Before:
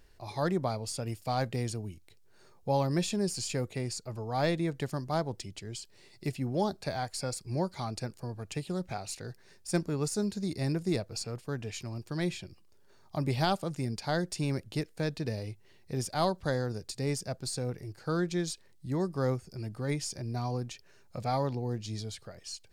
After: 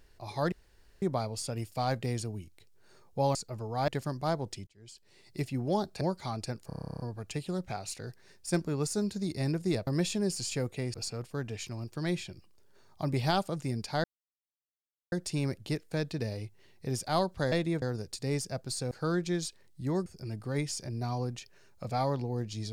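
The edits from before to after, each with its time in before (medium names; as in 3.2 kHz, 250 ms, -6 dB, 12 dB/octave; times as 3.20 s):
0.52 s: insert room tone 0.50 s
2.85–3.92 s: move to 11.08 s
4.45–4.75 s: move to 16.58 s
5.54–6.24 s: fade in
6.88–7.55 s: delete
8.21 s: stutter 0.03 s, 12 plays
14.18 s: insert silence 1.08 s
17.67–17.96 s: delete
19.11–19.39 s: delete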